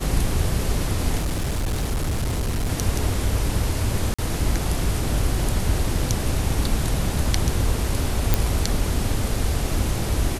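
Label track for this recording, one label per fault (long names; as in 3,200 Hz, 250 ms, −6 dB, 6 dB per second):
1.190000	2.690000	clipping −20 dBFS
4.140000	4.180000	drop-out 45 ms
8.340000	8.340000	click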